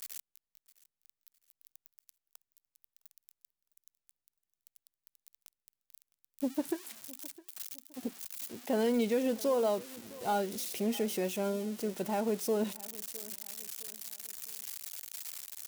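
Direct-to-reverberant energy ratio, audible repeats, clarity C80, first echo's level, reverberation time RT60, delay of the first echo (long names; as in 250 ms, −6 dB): no reverb audible, 2, no reverb audible, −20.5 dB, no reverb audible, 660 ms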